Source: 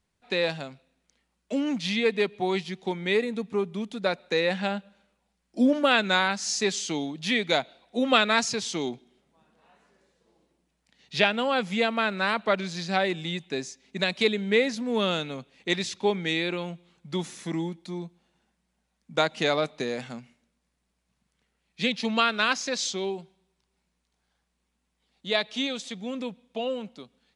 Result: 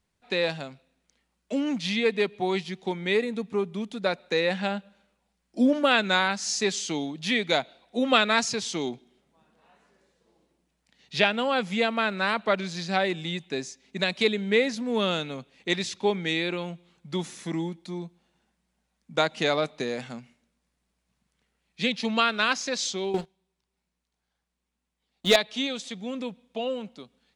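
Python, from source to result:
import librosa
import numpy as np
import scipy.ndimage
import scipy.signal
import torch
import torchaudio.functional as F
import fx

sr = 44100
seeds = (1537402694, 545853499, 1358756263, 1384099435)

y = fx.leveller(x, sr, passes=3, at=(23.14, 25.36))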